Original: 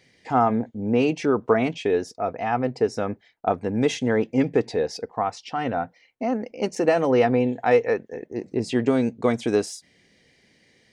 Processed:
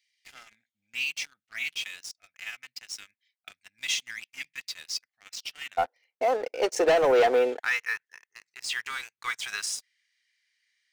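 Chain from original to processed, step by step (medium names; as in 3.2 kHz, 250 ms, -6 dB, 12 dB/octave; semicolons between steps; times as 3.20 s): inverse Chebyshev high-pass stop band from 1.1 kHz, stop band 40 dB, from 5.77 s stop band from 200 Hz, from 7.58 s stop band from 670 Hz; waveshaping leveller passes 3; trim -6.5 dB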